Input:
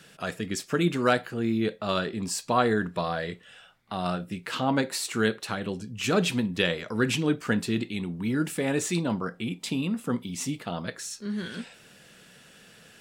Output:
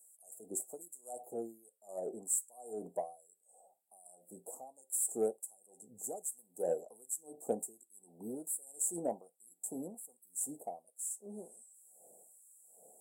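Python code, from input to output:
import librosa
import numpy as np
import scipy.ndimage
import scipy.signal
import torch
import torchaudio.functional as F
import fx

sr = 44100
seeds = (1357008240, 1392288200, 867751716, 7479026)

y = scipy.signal.sosfilt(scipy.signal.cheby1(5, 1.0, [770.0, 7700.0], 'bandstop', fs=sr, output='sos'), x)
y = fx.filter_lfo_highpass(y, sr, shape='sine', hz=1.3, low_hz=610.0, high_hz=5100.0, q=0.83)
y = fx.cheby_harmonics(y, sr, harmonics=(7,), levels_db=(-37,), full_scale_db=-22.0)
y = F.gain(torch.from_numpy(y), 3.0).numpy()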